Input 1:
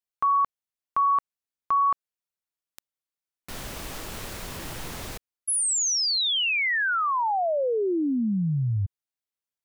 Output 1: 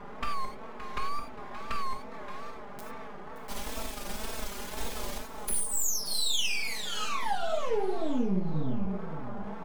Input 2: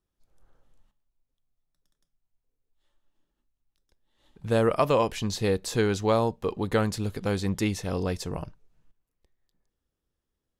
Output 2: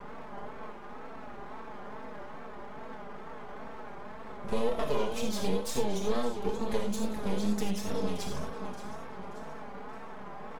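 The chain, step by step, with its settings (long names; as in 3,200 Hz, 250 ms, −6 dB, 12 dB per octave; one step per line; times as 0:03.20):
flanger swept by the level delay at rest 11.8 ms, full sweep at −23.5 dBFS
on a send: repeating echo 575 ms, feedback 40%, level −13 dB
on the sum: noise in a band 83–1,100 Hz −45 dBFS
half-wave rectification
dynamic equaliser 1,500 Hz, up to −5 dB, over −48 dBFS, Q 1.5
comb filter 4.7 ms, depth 91%
downward compressor 2.5 to 1, threshold −28 dBFS
reverb whose tail is shaped and stops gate 120 ms flat, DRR 1 dB
tape wow and flutter 95 cents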